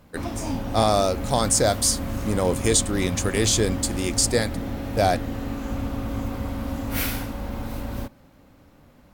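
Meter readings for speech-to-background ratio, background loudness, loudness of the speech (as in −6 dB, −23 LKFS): 7.5 dB, −30.0 LKFS, −22.5 LKFS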